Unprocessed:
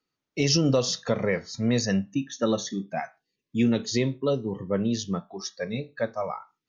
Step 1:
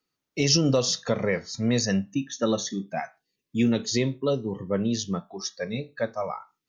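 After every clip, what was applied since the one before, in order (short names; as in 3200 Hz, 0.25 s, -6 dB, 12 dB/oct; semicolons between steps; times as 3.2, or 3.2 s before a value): high shelf 6200 Hz +6 dB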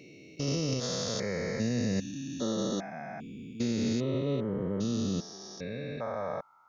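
stepped spectrum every 0.4 s; limiter -21.5 dBFS, peak gain reduction 8 dB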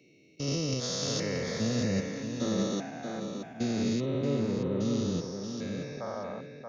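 ending faded out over 0.56 s; tape echo 0.629 s, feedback 34%, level -3 dB, low-pass 5400 Hz; three-band expander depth 40%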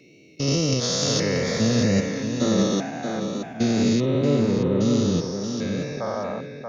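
wow and flutter 28 cents; gain +9 dB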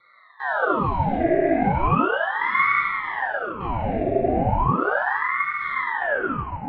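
vocal tract filter e; FDN reverb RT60 1.6 s, low-frequency decay 1.3×, high-frequency decay 0.55×, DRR -4.5 dB; ring modulator with a swept carrier 910 Hz, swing 85%, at 0.36 Hz; gain +7 dB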